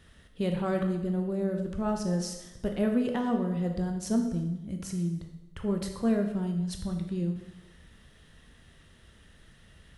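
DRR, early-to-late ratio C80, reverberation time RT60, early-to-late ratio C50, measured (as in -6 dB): 3.5 dB, 8.5 dB, 0.95 s, 6.5 dB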